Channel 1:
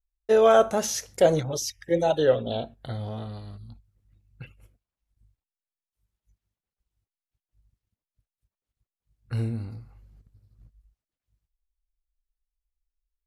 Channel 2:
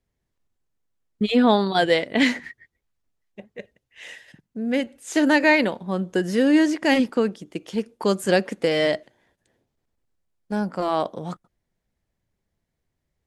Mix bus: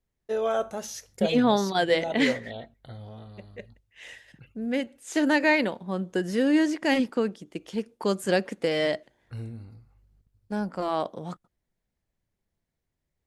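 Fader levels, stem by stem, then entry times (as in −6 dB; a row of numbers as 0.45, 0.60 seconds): −9.0, −4.5 decibels; 0.00, 0.00 seconds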